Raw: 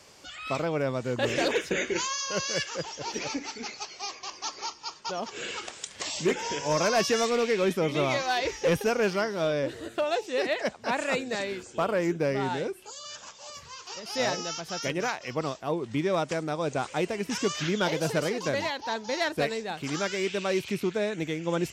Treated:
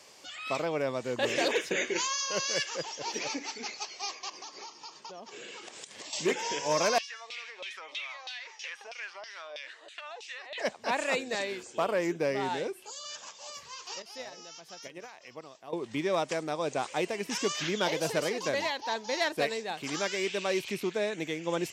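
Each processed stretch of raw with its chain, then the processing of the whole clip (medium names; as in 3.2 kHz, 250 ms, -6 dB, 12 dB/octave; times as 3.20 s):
4.29–6.13 s: high-pass 130 Hz + bass shelf 400 Hz +9 dB + compression, threshold -40 dBFS
6.98–10.58 s: frequency weighting ITU-R 468 + compression 8:1, threshold -28 dBFS + LFO band-pass saw down 3.1 Hz 620–3400 Hz
14.02–15.73 s: compression 10:1, threshold -31 dBFS + gate -35 dBFS, range -10 dB
whole clip: high-pass 380 Hz 6 dB/octave; peaking EQ 1.4 kHz -5.5 dB 0.24 oct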